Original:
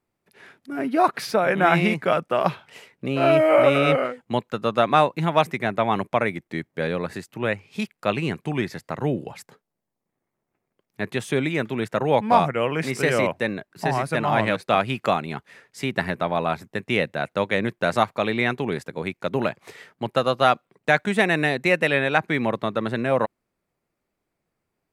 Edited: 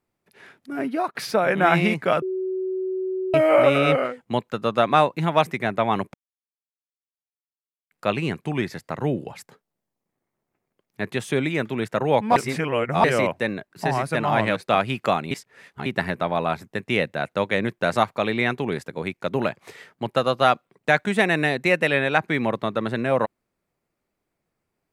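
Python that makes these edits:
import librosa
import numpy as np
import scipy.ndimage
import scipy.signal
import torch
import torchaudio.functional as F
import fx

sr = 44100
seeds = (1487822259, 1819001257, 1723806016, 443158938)

y = fx.edit(x, sr, fx.fade_out_to(start_s=0.83, length_s=0.32, floor_db=-19.5),
    fx.bleep(start_s=2.22, length_s=1.12, hz=375.0, db=-23.5),
    fx.silence(start_s=6.14, length_s=1.77),
    fx.reverse_span(start_s=12.36, length_s=0.68),
    fx.reverse_span(start_s=15.31, length_s=0.55), tone=tone)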